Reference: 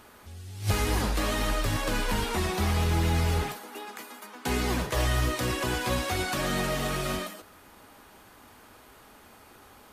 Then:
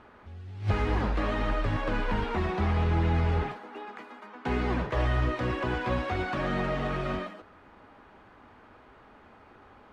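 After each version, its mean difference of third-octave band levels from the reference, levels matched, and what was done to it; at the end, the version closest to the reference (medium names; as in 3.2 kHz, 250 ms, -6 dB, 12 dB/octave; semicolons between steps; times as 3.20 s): 7.0 dB: low-pass 2.1 kHz 12 dB/octave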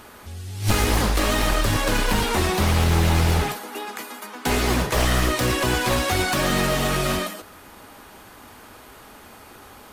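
1.0 dB: one-sided wavefolder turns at -25 dBFS; trim +8 dB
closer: second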